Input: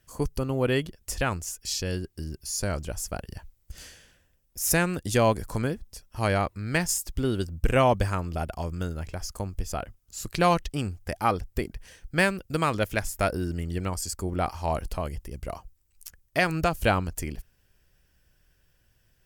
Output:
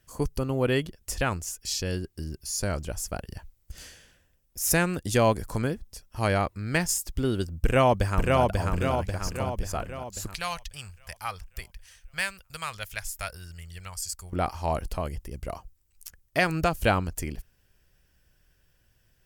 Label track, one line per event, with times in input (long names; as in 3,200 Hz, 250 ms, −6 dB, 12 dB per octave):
7.590000	8.410000	delay throw 540 ms, feedback 55%, level −2 dB
10.340000	14.330000	guitar amp tone stack bass-middle-treble 10-0-10